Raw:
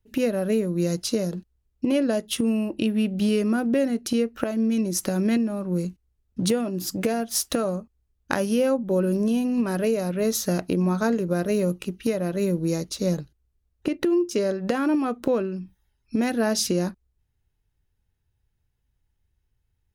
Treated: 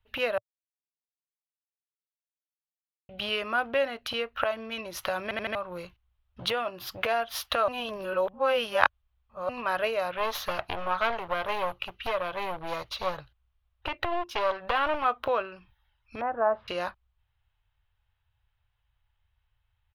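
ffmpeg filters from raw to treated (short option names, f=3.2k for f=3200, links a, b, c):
-filter_complex "[0:a]asettb=1/sr,asplit=3[a][b][c];[a]atrim=end=10.174[d];[b]atrim=start=10.17:end=15.05,asetpts=PTS-STARTPTS,afade=t=in:d=0.004:c=qsin,afade=t=out:st=4.876:d=0.004:c=qsin,aeval=exprs='clip(val(0),-1,0.0531)':c=same[e];[c]atrim=start=15.046[f];[d][e]acrossfade=d=0.004:c1=hsin:c2=qsin[g];[g][f]acrossfade=d=0.004:c1=qsin:c2=hsin,asettb=1/sr,asplit=3[h][i][j];[h]atrim=end=16.214[k];[i]atrim=start=16.21:end=16.68,asetpts=PTS-STARTPTS,afade=t=in:d=0.004:c=qsin,afade=t=out:st=0.466:d=0.004:c=qsin,lowpass=f=1.2k:w=0.5412,lowpass=f=1.2k:w=1.3066[l];[j]atrim=start=16.676[m];[k][l]acrossfade=d=0.004:c1=hsin:c2=qsin[n];[n][m]acrossfade=d=0.004:c1=qsin:c2=hsin,asplit=9[o][p][q][r][s][t][u][v][w];[o]atrim=end=0.38,asetpts=PTS-STARTPTS,afade=t=out:st=0.376:d=0.004:c=hsin[x];[p]atrim=start=0.38:end=3.09,asetpts=PTS-STARTPTS,volume=0[y];[q]atrim=start=3.09:end=5.312,asetpts=PTS-STARTPTS,afade=t=in:d=0.004:c=hsin[z];[r]atrim=start=5.228:end=5.312[aa];[s]atrim=start=5.228:end=5.312[ab];[t]atrim=start=5.228:end=5.312[ac];[u]atrim=start=5.548:end=7.682[ad];[v]atrim=start=7.678:end=9.492,asetpts=PTS-STARTPTS,areverse[ae];[w]atrim=start=9.488[af];[x][y][z]concat=n=3:v=0:a=1[ag];[ag][aa]acrossfade=d=0.004:c1=hsin:c2=hsin[ah];[ah][ab]acrossfade=d=0.004:c1=hsin:c2=hsin[ai];[ai][ac]acrossfade=d=0.004:c1=hsin:c2=hsin[aj];[aj][ad]acrossfade=d=0.004:c1=hsin:c2=hsin[ak];[ak][ae]acrossfade=d=0.004:c1=hsin:c2=hsin[al];[al][af]acrossfade=d=0.004:c1=hsin:c2=hsin,firequalizer=gain_entry='entry(110,0);entry(180,-21);entry(380,-12);entry(590,3);entry(1100,11);entry(1800,6);entry(3200,10);entry(5000,-6);entry(7800,-21);entry(12000,-6)':delay=0.05:min_phase=1,volume=-2dB"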